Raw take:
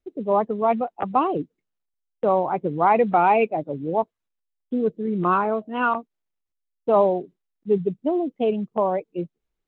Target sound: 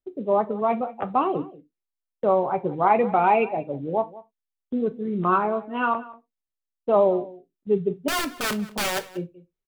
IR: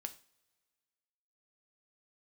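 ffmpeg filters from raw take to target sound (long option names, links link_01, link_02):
-filter_complex "[0:a]asettb=1/sr,asplit=3[link_01][link_02][link_03];[link_01]atrim=end=8.084[link_04];[link_02]atrim=start=8.08:end=9.07,asetpts=PTS-STARTPTS,afade=type=in:duration=0.004:curve=qsin,afade=type=out:start_time=0.986:duration=0.004:curve=qsin,aeval=exprs='(mod(9.44*val(0)+1,2)-1)/9.44':channel_layout=same[link_05];[link_03]atrim=start=9.066[link_06];[link_04][link_05]acrossfade=duration=0.004:curve1=hsin:curve2=qsin[link_07];[link_07][link_06]acrossfade=duration=0.004:curve1=qsin:curve2=hsin,agate=range=-7dB:threshold=-44dB:ratio=16:detection=peak,asplit=2[link_08][link_09];[link_09]adelay=186.6,volume=-19dB,highshelf=frequency=4000:gain=-4.2[link_10];[link_08][link_10]amix=inputs=2:normalize=0[link_11];[1:a]atrim=start_sample=2205,afade=type=out:start_time=0.21:duration=0.01,atrim=end_sample=9702,asetrate=70560,aresample=44100[link_12];[link_11][link_12]afir=irnorm=-1:irlink=0,volume=6dB"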